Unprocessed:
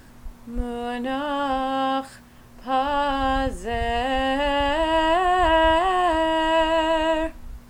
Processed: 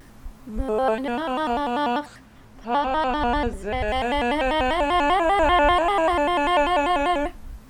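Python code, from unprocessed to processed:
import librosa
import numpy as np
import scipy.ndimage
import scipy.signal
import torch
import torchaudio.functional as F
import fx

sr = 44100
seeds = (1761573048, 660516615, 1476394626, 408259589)

y = fx.spec_box(x, sr, start_s=0.69, length_s=0.26, low_hz=430.0, high_hz=1500.0, gain_db=9)
y = fx.high_shelf(y, sr, hz=8100.0, db=-9.0, at=(1.99, 3.88))
y = fx.vibrato_shape(y, sr, shape='square', rate_hz=5.1, depth_cents=160.0)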